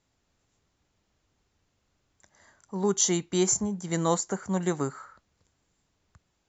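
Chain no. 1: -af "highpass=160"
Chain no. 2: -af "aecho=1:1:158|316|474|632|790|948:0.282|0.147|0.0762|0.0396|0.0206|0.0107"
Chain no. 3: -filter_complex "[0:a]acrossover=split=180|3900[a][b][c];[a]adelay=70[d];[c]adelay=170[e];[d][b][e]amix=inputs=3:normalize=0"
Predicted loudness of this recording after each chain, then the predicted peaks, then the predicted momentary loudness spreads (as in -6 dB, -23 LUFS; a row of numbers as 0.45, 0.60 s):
-27.5, -27.0, -28.5 LUFS; -11.0, -10.0, -11.0 dBFS; 8, 12, 12 LU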